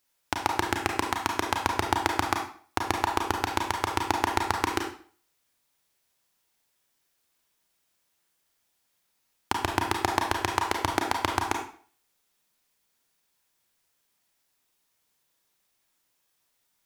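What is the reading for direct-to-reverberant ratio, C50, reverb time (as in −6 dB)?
1.5 dB, 5.5 dB, 0.45 s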